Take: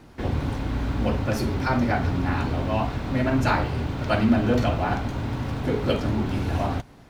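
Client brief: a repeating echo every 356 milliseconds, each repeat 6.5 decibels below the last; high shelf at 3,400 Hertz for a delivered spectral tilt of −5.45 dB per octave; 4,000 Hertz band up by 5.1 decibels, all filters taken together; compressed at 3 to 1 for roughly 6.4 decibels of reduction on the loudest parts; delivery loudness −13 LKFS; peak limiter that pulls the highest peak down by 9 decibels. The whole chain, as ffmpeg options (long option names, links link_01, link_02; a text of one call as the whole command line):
ffmpeg -i in.wav -af "highshelf=frequency=3400:gain=4.5,equalizer=frequency=4000:width_type=o:gain=3.5,acompressor=threshold=-24dB:ratio=3,alimiter=limit=-22.5dB:level=0:latency=1,aecho=1:1:356|712|1068|1424|1780|2136:0.473|0.222|0.105|0.0491|0.0231|0.0109,volume=17.5dB" out.wav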